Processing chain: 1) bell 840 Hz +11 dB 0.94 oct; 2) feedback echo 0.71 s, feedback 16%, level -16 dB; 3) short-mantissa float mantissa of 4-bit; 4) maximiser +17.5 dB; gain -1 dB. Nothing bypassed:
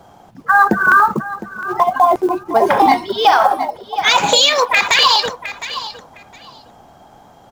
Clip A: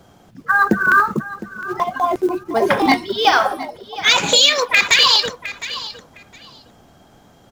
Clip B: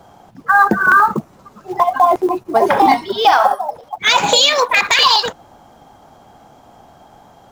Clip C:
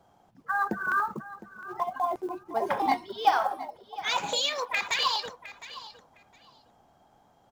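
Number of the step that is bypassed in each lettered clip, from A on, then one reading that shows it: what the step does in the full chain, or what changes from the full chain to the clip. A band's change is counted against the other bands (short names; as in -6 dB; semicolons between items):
1, 1 kHz band -6.5 dB; 2, momentary loudness spread change -2 LU; 4, crest factor change +8.0 dB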